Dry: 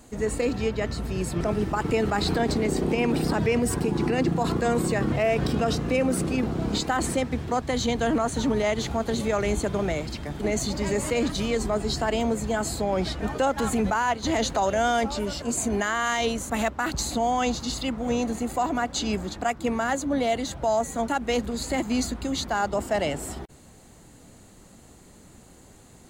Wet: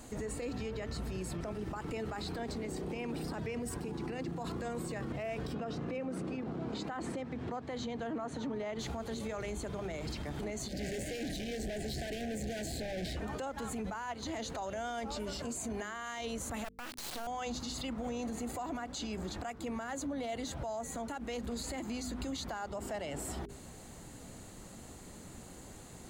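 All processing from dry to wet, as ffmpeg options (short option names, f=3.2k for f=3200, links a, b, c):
-filter_complex "[0:a]asettb=1/sr,asplit=3[a][b][c];[a]atrim=end=5.544[d];[b]atrim=start=5.54:end=8.79,asetpts=PTS-STARTPTS,afade=t=in:d=0.004:c=qsin,afade=t=out:st=3.246:d=0.004:c=qsin,highpass=120,aemphasis=mode=reproduction:type=75fm[e];[c]atrim=start=8.786[f];[d][e]acrossfade=d=0.004:c1=hsin:c2=qsin[g];[g][f]acrossfade=d=0.004:c1=qsin:c2=hsin,asettb=1/sr,asplit=3[h][i][j];[h]atrim=end=10.684[k];[i]atrim=start=10.68:end=13.17,asetpts=PTS-STARTPTS,afade=t=in:d=0.004:c=qsin,afade=t=out:st=2.486:d=0.004:c=qsin,acrossover=split=3700[l][m];[m]acompressor=threshold=-38dB:ratio=4:attack=1:release=60[n];[l][n]amix=inputs=2:normalize=0,volume=33dB,asoftclip=hard,volume=-33dB,asuperstop=centerf=1100:order=12:qfactor=1.4[o];[j]atrim=start=13.166[p];[k][o]acrossfade=d=0.004:c1=hsin:c2=qsin[q];[q][p]acrossfade=d=0.004:c1=qsin:c2=hsin,asettb=1/sr,asplit=3[r][s][t];[r]atrim=end=16.644[u];[s]atrim=start=16.64:end=17.27,asetpts=PTS-STARTPTS,afade=t=in:d=0.004:c=qsin,afade=t=out:st=0.626:d=0.004:c=qsin,acrossover=split=360 4800:gain=0.0708 1 0.224[v][w][x];[v][w][x]amix=inputs=3:normalize=0,acrusher=bits=3:dc=4:mix=0:aa=0.000001[y];[t]atrim=start=17.266[z];[u][y]acrossfade=d=0.004:c1=hsin:c2=qsin[aa];[aa][z]acrossfade=d=0.004:c1=qsin:c2=hsin,bandreject=f=50.07:t=h:w=4,bandreject=f=100.14:t=h:w=4,bandreject=f=150.21:t=h:w=4,bandreject=f=200.28:t=h:w=4,bandreject=f=250.35:t=h:w=4,bandreject=f=300.42:t=h:w=4,bandreject=f=350.49:t=h:w=4,bandreject=f=400.56:t=h:w=4,bandreject=f=450.63:t=h:w=4,acompressor=threshold=-33dB:ratio=6,alimiter=level_in=8dB:limit=-24dB:level=0:latency=1:release=45,volume=-8dB,volume=1dB"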